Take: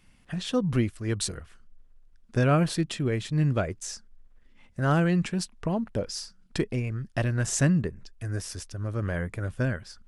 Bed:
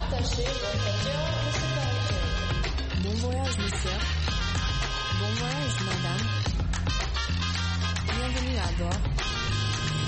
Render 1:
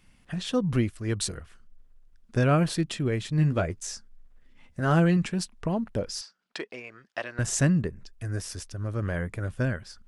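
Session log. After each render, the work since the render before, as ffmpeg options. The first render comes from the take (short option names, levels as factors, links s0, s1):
-filter_complex "[0:a]asettb=1/sr,asplit=3[s0][s1][s2];[s0]atrim=end=3.374[s3];[s1]atrim=start=3.37:end=5.17,asetpts=PTS-STARTPTS,afade=t=in:d=0.004:c=qsin,afade=t=out:st=1.796:d=0.004:c=qsin,asplit=2[s4][s5];[s5]adelay=12,volume=0.376[s6];[s4][s6]amix=inputs=2:normalize=0,atrim=end_sample=79380[s7];[s2]atrim=start=5.166[s8];[s3][s7]acrossfade=d=0.004:c1=hsin:c2=qsin[s9];[s9][s8]acrossfade=d=0.004:c1=qsin:c2=hsin,asettb=1/sr,asplit=3[s10][s11][s12];[s10]atrim=end=6.214[s13];[s11]atrim=start=6.21:end=7.39,asetpts=PTS-STARTPTS,afade=t=in:d=0.004:c=qsin,afade=t=out:st=1.176:d=0.004:c=qsin,highpass=600,lowpass=5100[s14];[s12]atrim=start=7.386[s15];[s13][s14]acrossfade=d=0.004:c1=hsin:c2=qsin[s16];[s16][s15]acrossfade=d=0.004:c1=qsin:c2=hsin"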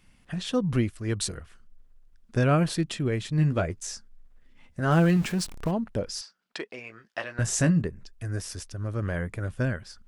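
-filter_complex "[0:a]asettb=1/sr,asplit=3[s0][s1][s2];[s0]atrim=end=4.924[s3];[s1]atrim=start=4.92:end=5.71,asetpts=PTS-STARTPTS,afade=t=in:d=0.004:c=qsin,afade=t=out:st=0.786:d=0.004:c=qsin,aeval=exprs='val(0)+0.5*0.0168*sgn(val(0))':c=same[s4];[s2]atrim=start=5.706[s5];[s3][s4]acrossfade=d=0.004:c1=hsin:c2=qsin[s6];[s6][s5]acrossfade=d=0.004:c1=qsin:c2=hsin,asettb=1/sr,asplit=3[s7][s8][s9];[s7]atrim=end=6.774[s10];[s8]atrim=start=6.77:end=7.82,asetpts=PTS-STARTPTS,afade=t=in:d=0.004:c=qsin,afade=t=out:st=1.046:d=0.004:c=qsin,asplit=2[s11][s12];[s12]adelay=18,volume=0.398[s13];[s11][s13]amix=inputs=2:normalize=0,atrim=end_sample=46305[s14];[s9]atrim=start=7.816[s15];[s10][s14]acrossfade=d=0.004:c1=hsin:c2=qsin[s16];[s16][s15]acrossfade=d=0.004:c1=qsin:c2=hsin"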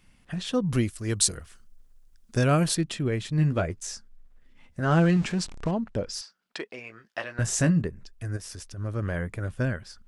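-filter_complex "[0:a]asettb=1/sr,asplit=3[s0][s1][s2];[s0]atrim=end=0.684[s3];[s1]atrim=start=0.68:end=2.75,asetpts=PTS-STARTPTS,afade=t=in:d=0.004:c=qsin,afade=t=out:st=2.066:d=0.004:c=qsin,bass=f=250:g=0,treble=f=4000:g=10[s4];[s2]atrim=start=2.746[s5];[s3][s4]acrossfade=d=0.004:c1=hsin:c2=qsin[s6];[s6][s5]acrossfade=d=0.004:c1=qsin:c2=hsin,asettb=1/sr,asplit=3[s7][s8][s9];[s7]atrim=end=4.824[s10];[s8]atrim=start=4.82:end=6.13,asetpts=PTS-STARTPTS,afade=t=in:d=0.004:c=qsin,afade=t=out:st=1.306:d=0.004:c=qsin,lowpass=f=8400:w=0.5412,lowpass=f=8400:w=1.3066[s11];[s9]atrim=start=6.126[s12];[s10][s11]acrossfade=d=0.004:c1=hsin:c2=qsin[s13];[s13][s12]acrossfade=d=0.004:c1=qsin:c2=hsin,asplit=3[s14][s15][s16];[s14]afade=t=out:st=8.36:d=0.02[s17];[s15]acompressor=threshold=0.0158:ratio=6:attack=3.2:release=140:knee=1:detection=peak,afade=t=in:st=8.36:d=0.02,afade=t=out:st=8.76:d=0.02[s18];[s16]afade=t=in:st=8.76:d=0.02[s19];[s17][s18][s19]amix=inputs=3:normalize=0"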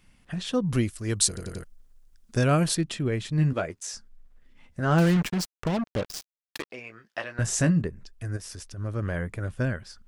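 -filter_complex "[0:a]asettb=1/sr,asplit=3[s0][s1][s2];[s0]atrim=end=3.534[s3];[s1]atrim=start=3.53:end=3.94,asetpts=PTS-STARTPTS,afade=t=in:d=0.004:c=qsin,afade=t=out:st=0.406:d=0.004:c=qsin,highpass=f=310:p=1[s4];[s2]atrim=start=3.936[s5];[s3][s4]acrossfade=d=0.004:c1=hsin:c2=qsin[s6];[s6][s5]acrossfade=d=0.004:c1=qsin:c2=hsin,asettb=1/sr,asplit=3[s7][s8][s9];[s7]atrim=end=4.984[s10];[s8]atrim=start=4.98:end=6.7,asetpts=PTS-STARTPTS,afade=t=in:d=0.004:c=qsin,afade=t=out:st=1.716:d=0.004:c=qsin,acrusher=bits=4:mix=0:aa=0.5[s11];[s9]atrim=start=6.696[s12];[s10][s11]acrossfade=d=0.004:c1=hsin:c2=qsin[s13];[s13][s12]acrossfade=d=0.004:c1=qsin:c2=hsin,asplit=5[s14][s15][s16][s17][s18];[s14]atrim=end=1.372[s19];[s15]atrim=start=1.278:end=1.372[s20];[s16]atrim=start=1.278:end=1.372[s21];[s17]atrim=start=1.278:end=1.372[s22];[s18]atrim=start=1.638[s23];[s19][s20]acrossfade=d=0.004:c1=hsin:c2=hsin[s24];[s24][s21]acrossfade=d=0.004:c1=hsin:c2=hsin[s25];[s25][s22]acrossfade=d=0.004:c1=hsin:c2=hsin[s26];[s26][s23]acrossfade=d=0.004:c1=hsin:c2=hsin"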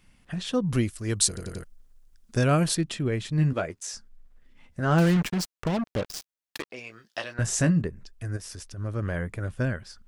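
-filter_complex "[0:a]asettb=1/sr,asplit=3[s0][s1][s2];[s0]atrim=end=6.764[s3];[s1]atrim=start=6.76:end=7.34,asetpts=PTS-STARTPTS,afade=t=in:d=0.004:c=qsin,afade=t=out:st=0.576:d=0.004:c=qsin,highshelf=f=2800:t=q:w=1.5:g=7[s4];[s2]atrim=start=7.336[s5];[s3][s4]acrossfade=d=0.004:c1=hsin:c2=qsin[s6];[s6][s5]acrossfade=d=0.004:c1=qsin:c2=hsin"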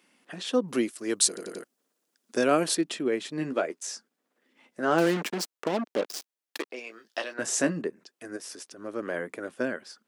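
-af "highpass=f=260:w=0.5412,highpass=f=260:w=1.3066,equalizer=f=370:t=o:w=1.8:g=3.5"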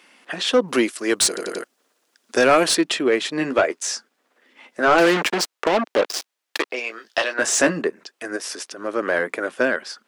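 -filter_complex "[0:a]asplit=2[s0][s1];[s1]highpass=f=720:p=1,volume=11.2,asoftclip=type=tanh:threshold=0.668[s2];[s0][s2]amix=inputs=2:normalize=0,lowpass=f=4200:p=1,volume=0.501"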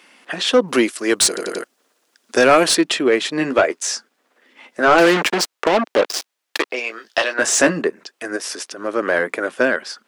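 -af "volume=1.41"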